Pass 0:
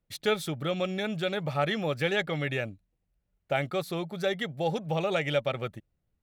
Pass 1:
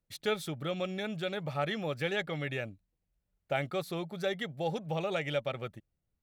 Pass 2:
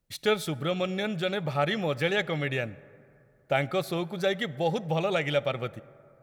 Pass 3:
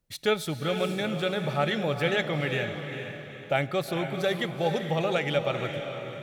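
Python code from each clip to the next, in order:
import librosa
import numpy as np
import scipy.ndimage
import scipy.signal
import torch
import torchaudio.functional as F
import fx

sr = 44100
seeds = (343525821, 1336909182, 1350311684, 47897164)

y1 = fx.rider(x, sr, range_db=10, speed_s=2.0)
y1 = y1 * 10.0 ** (-4.5 / 20.0)
y2 = fx.rev_plate(y1, sr, seeds[0], rt60_s=2.7, hf_ratio=0.35, predelay_ms=0, drr_db=18.5)
y2 = y2 * 10.0 ** (6.0 / 20.0)
y3 = fx.echo_diffused(y2, sr, ms=459, feedback_pct=42, wet_db=-7)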